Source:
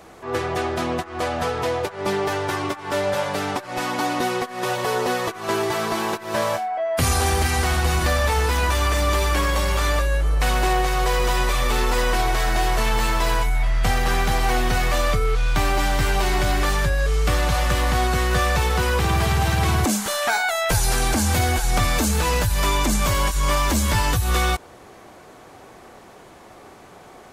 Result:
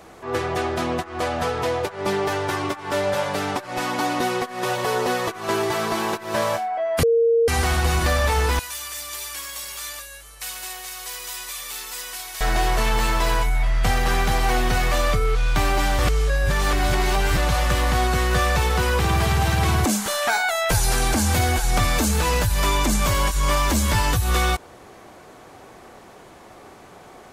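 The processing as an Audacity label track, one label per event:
7.030000	7.480000	bleep 462 Hz -14 dBFS
8.590000	12.410000	pre-emphasis coefficient 0.97
15.990000	17.370000	reverse

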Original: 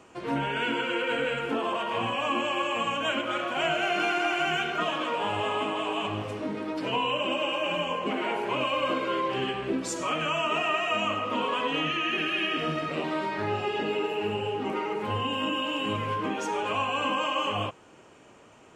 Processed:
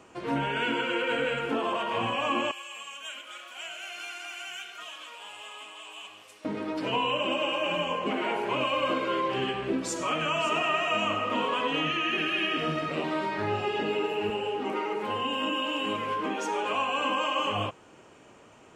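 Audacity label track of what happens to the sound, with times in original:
2.510000	6.450000	differentiator
9.790000	10.910000	echo throw 0.56 s, feedback 15%, level -11.5 dB
14.300000	17.400000	HPF 220 Hz

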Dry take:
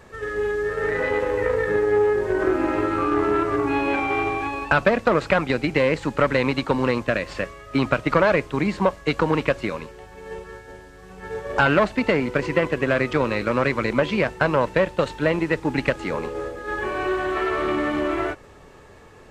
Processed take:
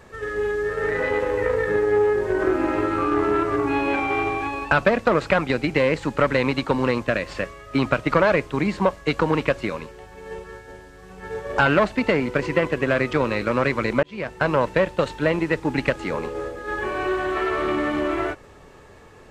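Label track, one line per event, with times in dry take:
14.030000	14.500000	fade in

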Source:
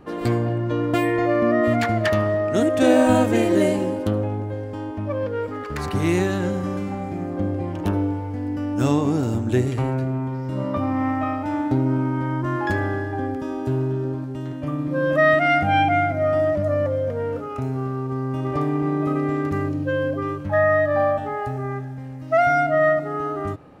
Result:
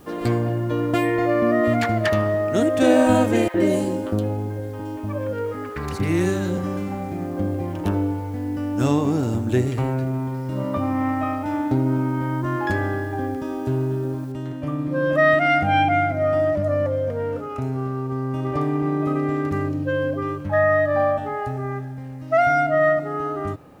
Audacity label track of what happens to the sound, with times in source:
3.480000	6.580000	three bands offset in time mids, lows, highs 60/120 ms, splits 830/3000 Hz
14.320000	14.320000	noise floor step -58 dB -70 dB

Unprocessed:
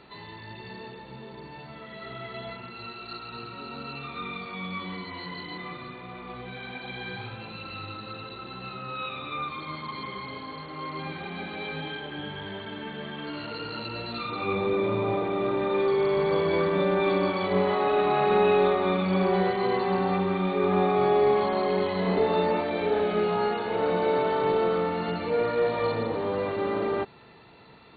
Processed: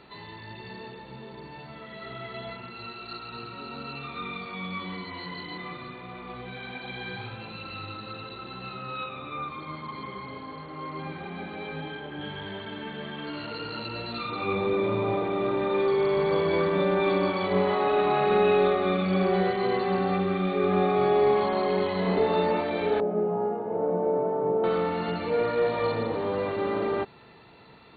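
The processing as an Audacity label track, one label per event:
9.040000	12.210000	high shelf 2900 Hz -11 dB
18.180000	21.180000	notch 940 Hz, Q 5.5
23.000000	24.640000	Chebyshev band-pass 140–710 Hz

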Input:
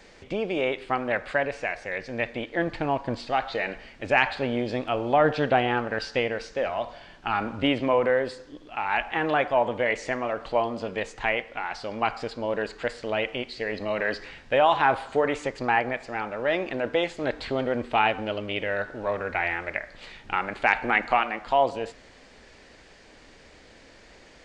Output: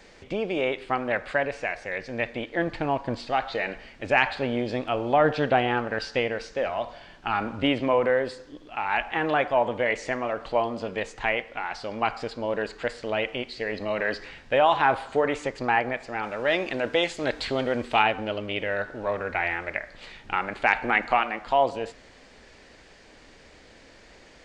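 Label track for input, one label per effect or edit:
16.230000	18.030000	high shelf 3000 Hz +9.5 dB

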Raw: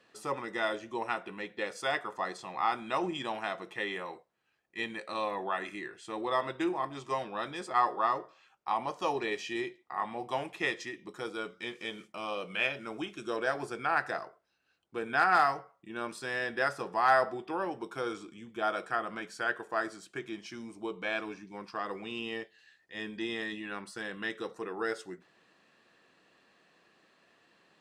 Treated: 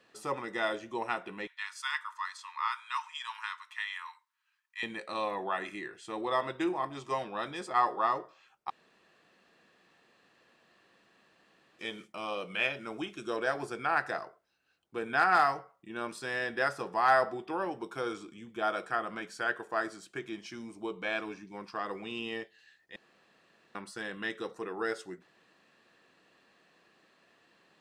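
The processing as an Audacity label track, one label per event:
1.470000	4.830000	Chebyshev high-pass 910 Hz, order 8
8.700000	11.790000	room tone
22.960000	23.750000	room tone

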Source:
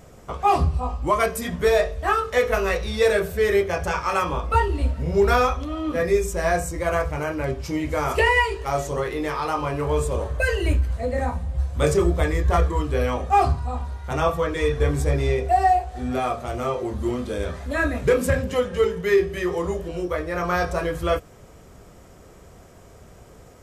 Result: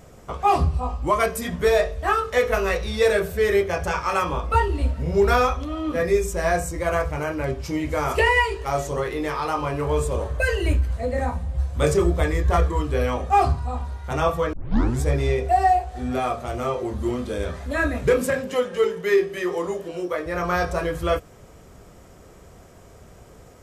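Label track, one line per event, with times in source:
14.530000	14.530000	tape start 0.47 s
18.250000	20.260000	HPF 220 Hz

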